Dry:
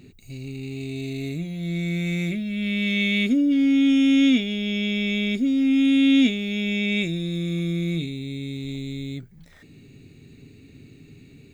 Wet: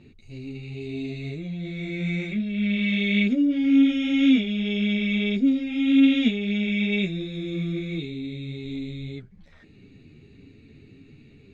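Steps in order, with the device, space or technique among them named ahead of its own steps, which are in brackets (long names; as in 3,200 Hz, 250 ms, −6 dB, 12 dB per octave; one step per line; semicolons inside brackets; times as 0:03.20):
string-machine ensemble chorus (string-ensemble chorus; low-pass filter 4,000 Hz 12 dB per octave)
level +1.5 dB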